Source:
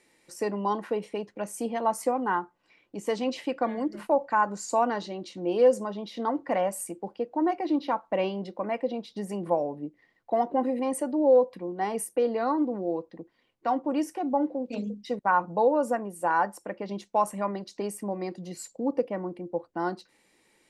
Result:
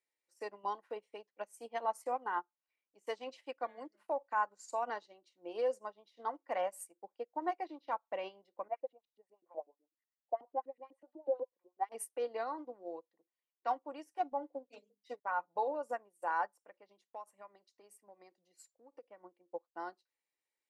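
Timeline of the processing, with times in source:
0:08.68–0:11.92: auto-filter band-pass saw up 8.1 Hz 240–3,000 Hz
0:14.05–0:15.82: comb filter 7 ms, depth 44%
0:16.54–0:19.21: downward compressor, threshold −31 dBFS
whole clip: brickwall limiter −21 dBFS; high-pass filter 520 Hz 12 dB per octave; expander for the loud parts 2.5 to 1, over −46 dBFS

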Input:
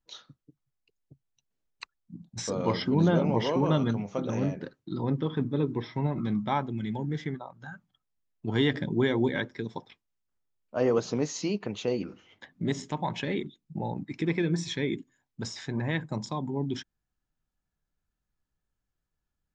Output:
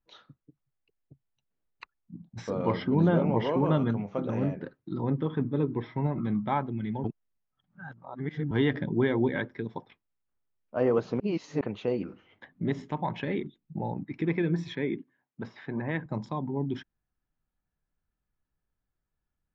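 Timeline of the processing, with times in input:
0:07.04–0:08.51: reverse
0:11.20–0:11.61: reverse
0:14.75–0:16.06: band-pass filter 150–3,200 Hz
whole clip: low-pass filter 2,400 Hz 12 dB per octave

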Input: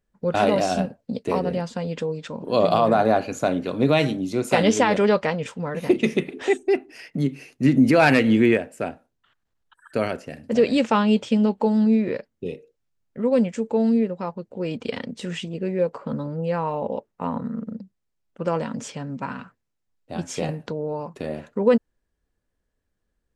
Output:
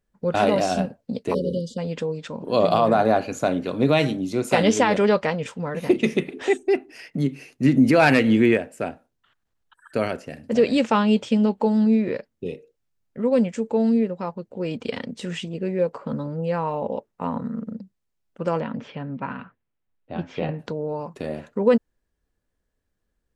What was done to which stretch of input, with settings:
0:01.34–0:01.78: time-frequency box erased 590–2,900 Hz
0:18.60–0:20.59: low-pass filter 3,300 Hz 24 dB per octave

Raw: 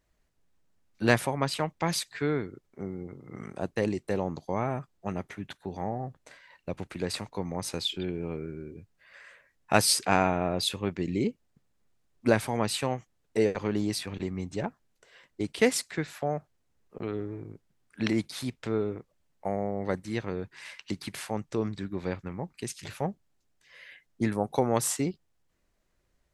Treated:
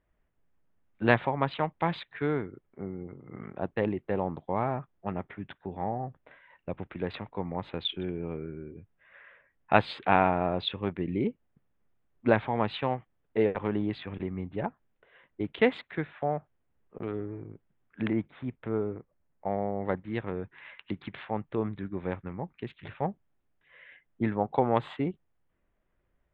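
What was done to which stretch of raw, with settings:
0:18.02–0:19.50: high-frequency loss of the air 350 metres
whole clip: adaptive Wiener filter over 9 samples; elliptic low-pass filter 3,600 Hz, stop band 40 dB; dynamic equaliser 870 Hz, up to +4 dB, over −41 dBFS, Q 1.9

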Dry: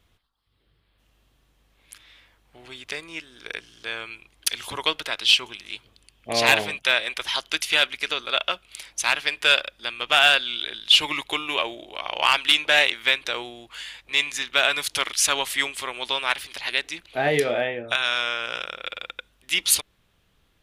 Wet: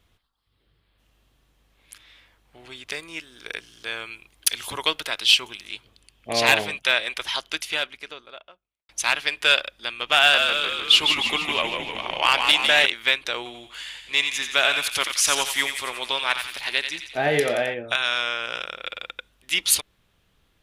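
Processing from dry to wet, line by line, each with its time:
0:02.90–0:05.69: high-shelf EQ 9,400 Hz +8 dB
0:07.14–0:08.89: fade out and dull
0:10.18–0:12.86: echo with shifted repeats 153 ms, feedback 60%, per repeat −65 Hz, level −5.5 dB
0:13.37–0:17.74: feedback echo with a high-pass in the loop 88 ms, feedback 58%, high-pass 1,200 Hz, level −6 dB

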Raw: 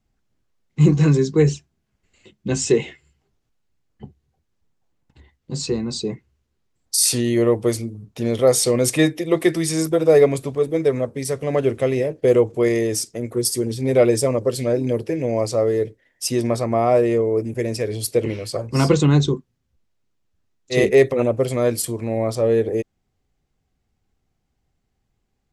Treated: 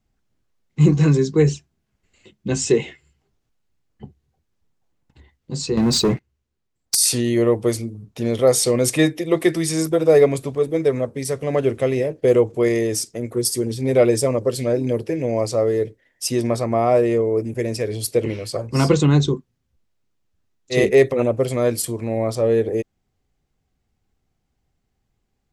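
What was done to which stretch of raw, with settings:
0:05.77–0:06.95: leveller curve on the samples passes 3

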